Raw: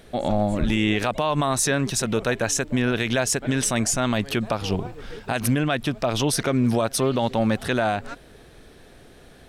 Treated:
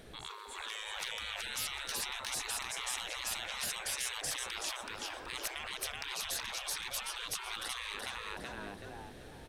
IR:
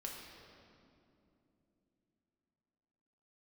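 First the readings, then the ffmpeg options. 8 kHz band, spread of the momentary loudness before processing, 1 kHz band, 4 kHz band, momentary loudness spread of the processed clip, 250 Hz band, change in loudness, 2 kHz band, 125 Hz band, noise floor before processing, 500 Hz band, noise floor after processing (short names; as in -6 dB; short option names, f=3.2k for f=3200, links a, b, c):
-11.0 dB, 5 LU, -15.5 dB, -6.5 dB, 8 LU, -32.0 dB, -14.5 dB, -11.0 dB, -30.5 dB, -49 dBFS, -25.0 dB, -50 dBFS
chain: -filter_complex "[0:a]asplit=5[a][b][c][d][e];[b]adelay=376,afreqshift=47,volume=-4dB[f];[c]adelay=752,afreqshift=94,volume=-13.9dB[g];[d]adelay=1128,afreqshift=141,volume=-23.8dB[h];[e]adelay=1504,afreqshift=188,volume=-33.7dB[i];[a][f][g][h][i]amix=inputs=5:normalize=0,afftfilt=real='re*lt(hypot(re,im),0.0708)':imag='im*lt(hypot(re,im),0.0708)':win_size=1024:overlap=0.75,asoftclip=type=hard:threshold=-21dB,volume=-4.5dB"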